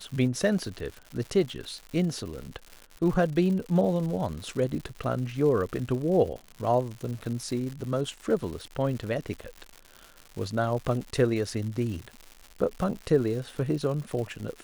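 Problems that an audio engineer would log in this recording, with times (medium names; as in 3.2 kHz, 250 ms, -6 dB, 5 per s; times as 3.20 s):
crackle 190 per s -35 dBFS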